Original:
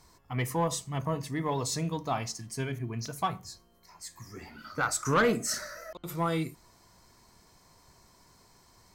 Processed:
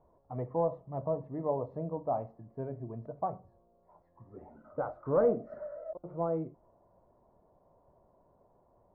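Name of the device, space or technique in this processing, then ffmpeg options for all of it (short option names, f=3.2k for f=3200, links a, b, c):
under water: -af "lowpass=f=720:w=0.5412,lowpass=f=720:w=1.3066,tiltshelf=f=670:g=-8,equalizer=f=580:t=o:w=0.41:g=9"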